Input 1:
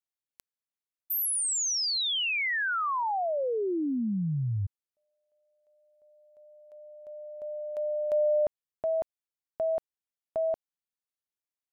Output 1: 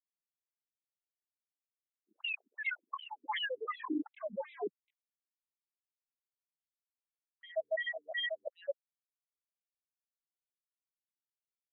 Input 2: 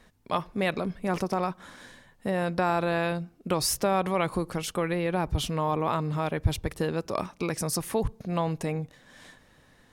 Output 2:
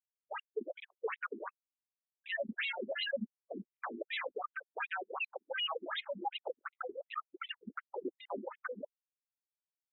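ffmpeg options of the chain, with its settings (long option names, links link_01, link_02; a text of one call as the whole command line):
ffmpeg -i in.wav -filter_complex "[0:a]aecho=1:1:2.3:0.89,asplit=2[link_01][link_02];[link_02]asplit=5[link_03][link_04][link_05][link_06][link_07];[link_03]adelay=245,afreqshift=-80,volume=-12dB[link_08];[link_04]adelay=490,afreqshift=-160,volume=-18.9dB[link_09];[link_05]adelay=735,afreqshift=-240,volume=-25.9dB[link_10];[link_06]adelay=980,afreqshift=-320,volume=-32.8dB[link_11];[link_07]adelay=1225,afreqshift=-400,volume=-39.7dB[link_12];[link_08][link_09][link_10][link_11][link_12]amix=inputs=5:normalize=0[link_13];[link_01][link_13]amix=inputs=2:normalize=0,acrossover=split=180|560|1200[link_14][link_15][link_16][link_17];[link_14]acompressor=threshold=-38dB:ratio=2[link_18];[link_15]acompressor=threshold=-38dB:ratio=8[link_19];[link_16]acompressor=threshold=-31dB:ratio=1.5[link_20];[link_17]acompressor=threshold=-28dB:ratio=4[link_21];[link_18][link_19][link_20][link_21]amix=inputs=4:normalize=0,afreqshift=40,aresample=8000,asoftclip=type=tanh:threshold=-27.5dB,aresample=44100,aeval=exprs='val(0)+0.000794*(sin(2*PI*60*n/s)+sin(2*PI*2*60*n/s)/2+sin(2*PI*3*60*n/s)/3+sin(2*PI*4*60*n/s)/4+sin(2*PI*5*60*n/s)/5)':channel_layout=same,afftfilt=real='re*gte(hypot(re,im),0.126)':imag='im*gte(hypot(re,im),0.126)':win_size=1024:overlap=0.75,aeval=exprs='0.0106*(abs(mod(val(0)/0.0106+3,4)-2)-1)':channel_layout=same,afftfilt=real='re*between(b*sr/1024,270*pow(2900/270,0.5+0.5*sin(2*PI*2.7*pts/sr))/1.41,270*pow(2900/270,0.5+0.5*sin(2*PI*2.7*pts/sr))*1.41)':imag='im*between(b*sr/1024,270*pow(2900/270,0.5+0.5*sin(2*PI*2.7*pts/sr))/1.41,270*pow(2900/270,0.5+0.5*sin(2*PI*2.7*pts/sr))*1.41)':win_size=1024:overlap=0.75,volume=12.5dB" out.wav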